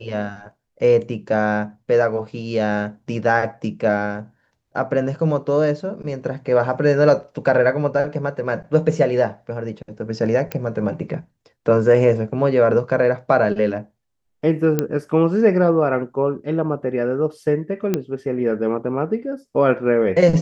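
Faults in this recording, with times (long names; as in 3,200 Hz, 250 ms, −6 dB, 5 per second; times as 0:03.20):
0:10.52: click −11 dBFS
0:14.79: click −6 dBFS
0:17.94: click −7 dBFS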